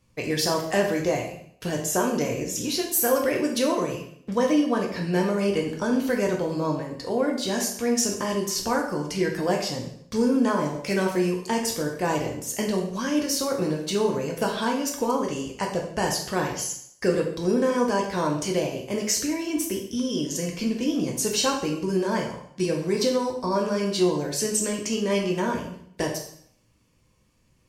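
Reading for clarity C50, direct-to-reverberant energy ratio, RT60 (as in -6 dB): 6.0 dB, 0.0 dB, 0.60 s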